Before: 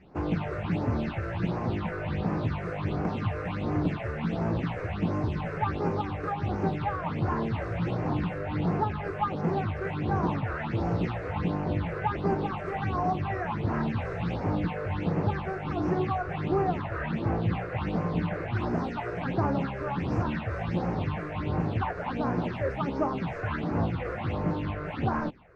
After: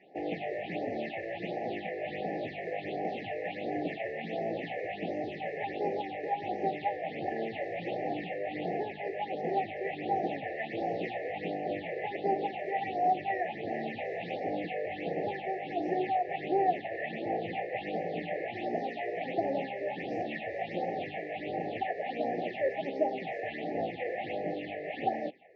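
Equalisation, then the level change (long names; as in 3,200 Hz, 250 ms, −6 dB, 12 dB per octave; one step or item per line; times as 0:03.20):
high-pass filter 520 Hz 12 dB per octave
linear-phase brick-wall band-stop 830–1,700 Hz
Bessel low-pass filter 2,600 Hz, order 2
+4.0 dB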